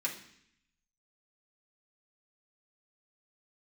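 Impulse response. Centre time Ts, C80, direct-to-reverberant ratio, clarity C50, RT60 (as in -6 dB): 19 ms, 12.5 dB, -4.5 dB, 9.0 dB, 0.65 s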